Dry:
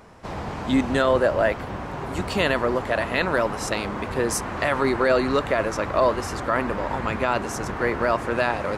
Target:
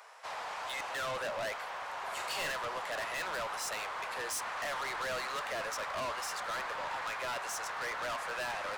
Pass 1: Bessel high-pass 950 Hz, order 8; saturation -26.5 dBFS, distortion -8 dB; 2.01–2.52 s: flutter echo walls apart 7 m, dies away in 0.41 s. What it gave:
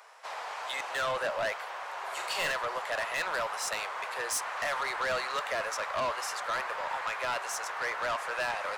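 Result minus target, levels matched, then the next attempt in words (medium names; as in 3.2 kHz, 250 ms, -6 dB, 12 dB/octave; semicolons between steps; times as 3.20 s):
saturation: distortion -4 dB
Bessel high-pass 950 Hz, order 8; saturation -34 dBFS, distortion -4 dB; 2.01–2.52 s: flutter echo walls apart 7 m, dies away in 0.41 s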